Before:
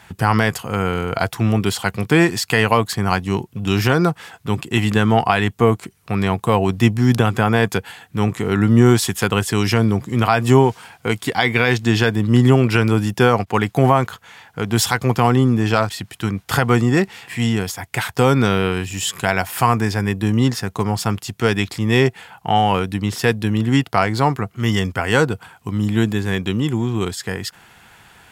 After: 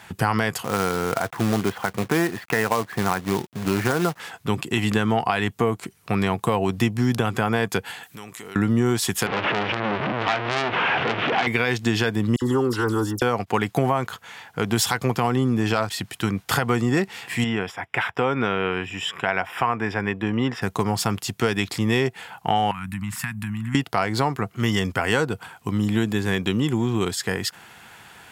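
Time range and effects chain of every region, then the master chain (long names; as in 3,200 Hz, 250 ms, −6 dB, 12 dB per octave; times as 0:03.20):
0:00.64–0:04.20: low-pass filter 2,100 Hz 24 dB per octave + low-shelf EQ 90 Hz −9.5 dB + log-companded quantiser 4 bits
0:08.03–0:08.56: spectral tilt +3 dB per octave + downward compressor 4 to 1, threshold −38 dBFS
0:09.26–0:11.47: linear delta modulator 16 kbit/s, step −14 dBFS + high-pass filter 130 Hz + saturating transformer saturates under 3,100 Hz
0:12.36–0:13.22: transient designer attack −11 dB, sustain 0 dB + phaser with its sweep stopped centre 640 Hz, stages 6 + all-pass dispersion lows, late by 56 ms, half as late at 2,600 Hz
0:17.44–0:20.62: Savitzky-Golay smoothing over 25 samples + low-shelf EQ 280 Hz −8.5 dB
0:22.71–0:23.75: flat-topped bell 4,400 Hz −11 dB 1.2 octaves + downward compressor 4 to 1, threshold −22 dBFS + Chebyshev band-stop filter 190–1,100 Hz
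whole clip: high-pass filter 130 Hz 6 dB per octave; downward compressor 4 to 1, threshold −19 dBFS; boost into a limiter +7 dB; level −5.5 dB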